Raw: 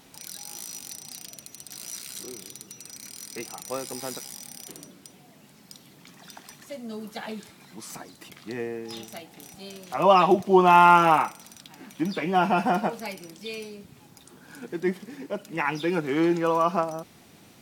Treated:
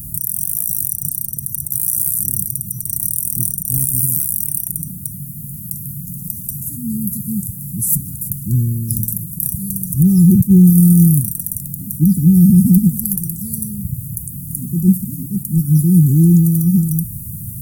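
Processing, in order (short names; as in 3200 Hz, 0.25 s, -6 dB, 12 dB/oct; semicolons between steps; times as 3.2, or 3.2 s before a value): inverse Chebyshev band-stop 530–3400 Hz, stop band 70 dB; maximiser +34.5 dB; attack slew limiter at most 410 dB/s; gain -1 dB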